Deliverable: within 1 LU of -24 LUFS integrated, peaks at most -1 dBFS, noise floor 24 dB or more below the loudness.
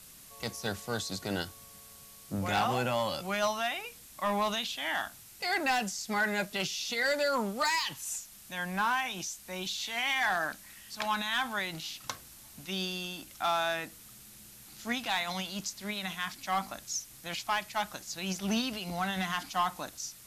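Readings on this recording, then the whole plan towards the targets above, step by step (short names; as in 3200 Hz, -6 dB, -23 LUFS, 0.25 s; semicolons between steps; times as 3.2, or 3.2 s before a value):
clipped 0.6%; flat tops at -22.5 dBFS; noise floor -53 dBFS; noise floor target -57 dBFS; loudness -32.5 LUFS; peak -22.5 dBFS; loudness target -24.0 LUFS
-> clip repair -22.5 dBFS; denoiser 6 dB, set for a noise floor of -53 dBFS; gain +8.5 dB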